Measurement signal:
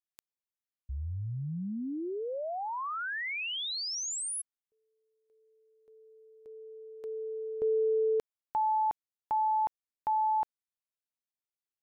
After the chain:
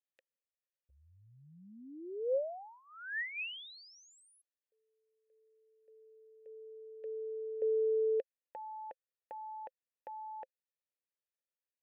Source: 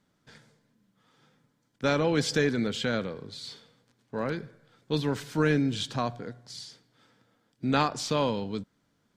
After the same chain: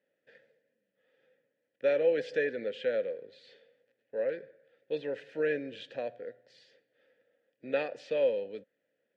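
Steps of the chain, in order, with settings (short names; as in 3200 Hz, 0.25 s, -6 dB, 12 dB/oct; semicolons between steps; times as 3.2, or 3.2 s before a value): vowel filter e; tone controls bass -3 dB, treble -7 dB; gain +6.5 dB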